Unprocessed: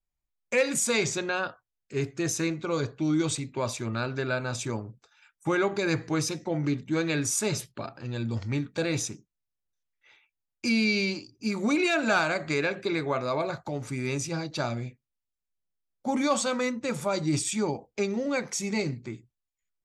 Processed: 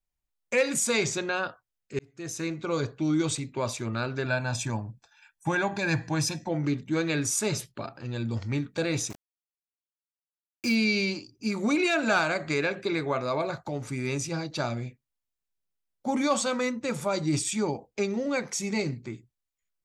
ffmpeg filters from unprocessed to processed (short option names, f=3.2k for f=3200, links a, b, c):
-filter_complex "[0:a]asettb=1/sr,asplit=3[a][b][c];[a]atrim=end=4.254[d];[b]atrim=start=4.25:end=6.49,asetpts=PTS-STARTPTS,afade=t=in:d=0.004:c=qsin,afade=t=out:st=2.236:d=0.004:c=qsin,aecho=1:1:1.2:0.65,atrim=end_sample=98784[e];[c]atrim=start=6.486[f];[d][e]acrossfade=d=0.004:c1=hsin:c2=qsin[g];[g][f]acrossfade=d=0.004:c1=qsin:c2=hsin,asettb=1/sr,asplit=3[h][i][j];[h]atrim=end=9.104[k];[i]atrim=start=9.1:end=10.75,asetpts=PTS-STARTPTS,afade=t=in:d=0.004:c=qsin,afade=t=out:st=1.646:d=0.004:c=qsin,aeval=exprs='val(0)*gte(abs(val(0)),0.0141)':c=same[l];[j]atrim=start=10.746[m];[k][l]acrossfade=d=0.004:c1=hsin:c2=qsin[n];[n][m]acrossfade=d=0.004:c1=qsin:c2=hsin,asplit=2[o][p];[o]atrim=end=1.99,asetpts=PTS-STARTPTS,afade=t=out:st=1.986:d=0.004:c=hsin[q];[p]atrim=start=1.99,asetpts=PTS-STARTPTS,afade=t=in:d=0.69[r];[q][r]concat=n=2:v=0:a=1"